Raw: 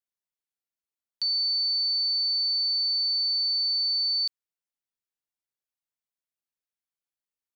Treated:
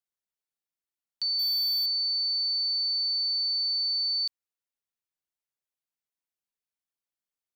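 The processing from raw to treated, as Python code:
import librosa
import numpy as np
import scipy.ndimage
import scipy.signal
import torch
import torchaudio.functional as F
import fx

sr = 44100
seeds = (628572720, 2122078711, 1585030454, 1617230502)

y = fx.power_curve(x, sr, exponent=0.5, at=(1.39, 1.86))
y = y * 10.0 ** (-2.0 / 20.0)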